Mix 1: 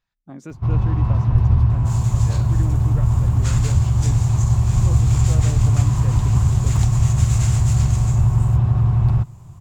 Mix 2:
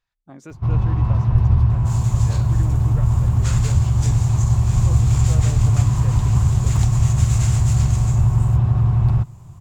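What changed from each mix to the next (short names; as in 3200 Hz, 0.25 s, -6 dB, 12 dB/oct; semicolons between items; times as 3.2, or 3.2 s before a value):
speech: add bell 200 Hz -6.5 dB 1.4 oct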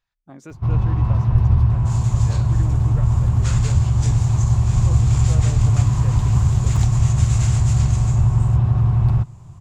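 second sound: add LPF 9000 Hz 12 dB/oct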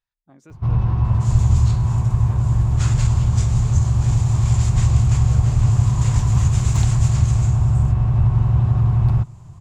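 speech -8.5 dB; second sound: entry -0.65 s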